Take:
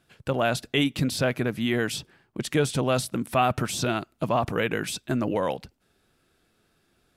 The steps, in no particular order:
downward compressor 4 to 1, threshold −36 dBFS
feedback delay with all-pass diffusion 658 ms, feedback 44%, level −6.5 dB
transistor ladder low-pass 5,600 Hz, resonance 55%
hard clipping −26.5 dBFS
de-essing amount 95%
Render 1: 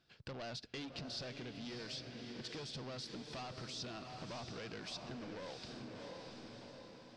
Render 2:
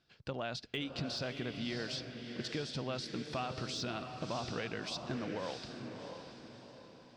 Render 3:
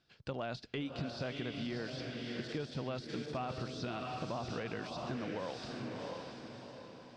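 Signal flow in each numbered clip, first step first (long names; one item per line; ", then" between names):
hard clipping, then feedback delay with all-pass diffusion, then downward compressor, then transistor ladder low-pass, then de-essing
transistor ladder low-pass, then downward compressor, then hard clipping, then feedback delay with all-pass diffusion, then de-essing
feedback delay with all-pass diffusion, then de-essing, then transistor ladder low-pass, then downward compressor, then hard clipping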